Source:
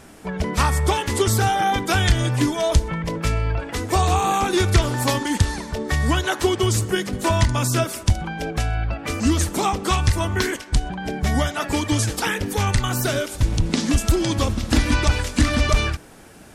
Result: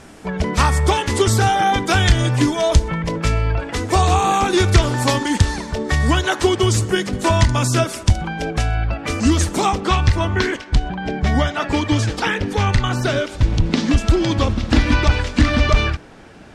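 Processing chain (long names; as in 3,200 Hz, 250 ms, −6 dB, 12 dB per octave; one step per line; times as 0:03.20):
low-pass filter 8,600 Hz 12 dB per octave, from 0:09.80 4,400 Hz
level +3.5 dB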